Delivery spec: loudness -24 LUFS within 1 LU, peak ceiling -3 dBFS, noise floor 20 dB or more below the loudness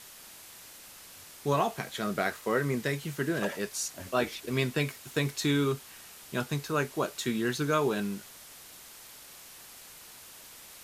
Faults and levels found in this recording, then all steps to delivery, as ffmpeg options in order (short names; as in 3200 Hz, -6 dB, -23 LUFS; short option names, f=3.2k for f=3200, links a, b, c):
noise floor -50 dBFS; noise floor target -51 dBFS; loudness -31.0 LUFS; peak -13.5 dBFS; loudness target -24.0 LUFS
-> -af "afftdn=nr=6:nf=-50"
-af "volume=7dB"